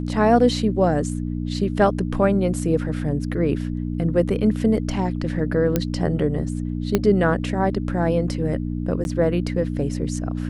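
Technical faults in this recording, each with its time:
mains hum 60 Hz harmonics 5 −26 dBFS
0:05.76: click −6 dBFS
0:06.95: click −5 dBFS
0:09.04–0:09.05: drop-out 11 ms

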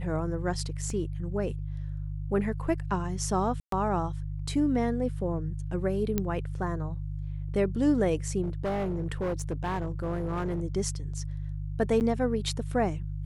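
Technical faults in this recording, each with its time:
mains hum 50 Hz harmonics 3 −34 dBFS
0:00.90: drop-out 2.1 ms
0:03.60–0:03.72: drop-out 123 ms
0:06.18: click −13 dBFS
0:08.42–0:10.62: clipping −26 dBFS
0:12.00–0:12.01: drop-out 9 ms

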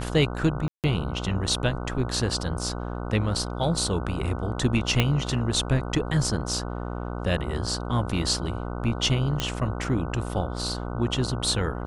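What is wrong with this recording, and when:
mains buzz 60 Hz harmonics 25 −32 dBFS
0:00.68–0:00.84: drop-out 158 ms
0:05.00: click −7 dBFS
0:09.40: click −10 dBFS

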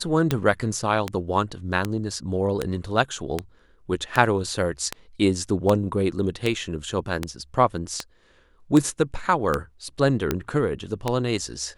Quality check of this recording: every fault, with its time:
scratch tick 78 rpm −8 dBFS

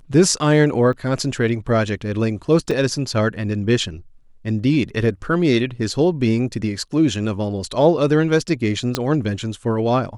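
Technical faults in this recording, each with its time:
0:00.93: drop-out 2.9 ms
0:02.71: drop-out 4.7 ms
0:08.95: click −5 dBFS

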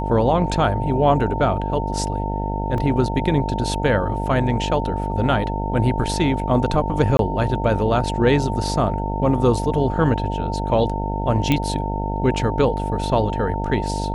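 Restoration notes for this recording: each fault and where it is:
mains buzz 50 Hz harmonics 17 −25 dBFS
whistle 900 Hz −27 dBFS
0:02.78: drop-out 2.1 ms
0:07.17–0:07.19: drop-out 22 ms
0:11.52: click −6 dBFS

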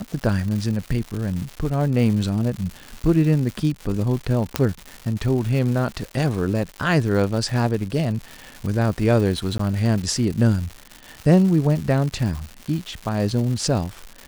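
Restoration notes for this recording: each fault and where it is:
surface crackle 290 per second −28 dBFS
0:04.56: click −3 dBFS
0:09.58–0:09.59: drop-out 14 ms

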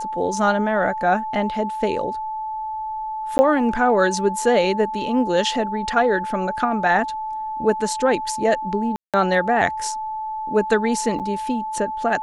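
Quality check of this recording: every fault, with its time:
whistle 870 Hz −25 dBFS
0:03.38–0:03.39: drop-out 10 ms
0:08.96–0:09.14: drop-out 177 ms
0:11.19–0:11.20: drop-out 8.1 ms

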